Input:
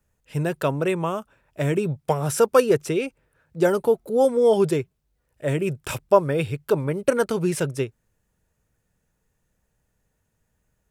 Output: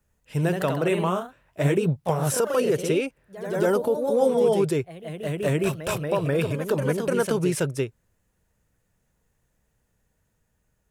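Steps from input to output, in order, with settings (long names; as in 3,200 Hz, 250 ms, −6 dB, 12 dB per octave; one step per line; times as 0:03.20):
brickwall limiter −14.5 dBFS, peak gain reduction 11.5 dB
delay with pitch and tempo change per echo 100 ms, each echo +1 semitone, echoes 3, each echo −6 dB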